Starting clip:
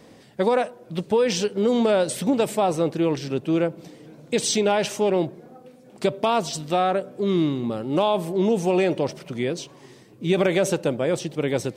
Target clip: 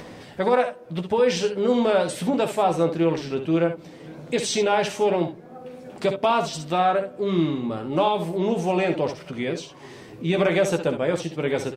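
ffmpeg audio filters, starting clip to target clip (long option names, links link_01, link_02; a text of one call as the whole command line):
ffmpeg -i in.wav -filter_complex "[0:a]equalizer=frequency=250:width=0.4:gain=-6.5,acompressor=mode=upward:threshold=-35dB:ratio=2.5,highshelf=frequency=3700:gain=-11.5,asplit=2[link_01][link_02];[link_02]aecho=0:1:12|62|72:0.473|0.316|0.266[link_03];[link_01][link_03]amix=inputs=2:normalize=0,volume=3.5dB" out.wav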